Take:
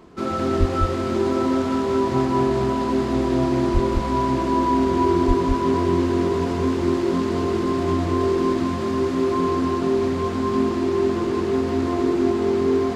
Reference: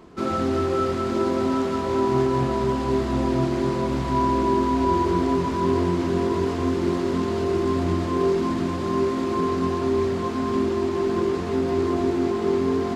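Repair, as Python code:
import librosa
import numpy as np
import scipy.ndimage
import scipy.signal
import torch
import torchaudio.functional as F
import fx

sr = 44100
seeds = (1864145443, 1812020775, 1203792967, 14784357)

y = fx.highpass(x, sr, hz=140.0, slope=24, at=(0.59, 0.71), fade=0.02)
y = fx.highpass(y, sr, hz=140.0, slope=24, at=(3.73, 3.85), fade=0.02)
y = fx.highpass(y, sr, hz=140.0, slope=24, at=(5.27, 5.39), fade=0.02)
y = fx.fix_echo_inverse(y, sr, delay_ms=203, level_db=-3.5)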